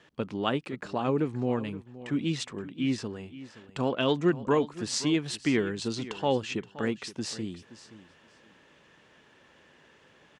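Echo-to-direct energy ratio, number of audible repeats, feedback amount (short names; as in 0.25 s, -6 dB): -16.0 dB, 2, 17%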